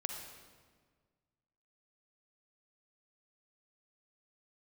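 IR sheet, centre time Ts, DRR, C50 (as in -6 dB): 48 ms, 3.0 dB, 3.5 dB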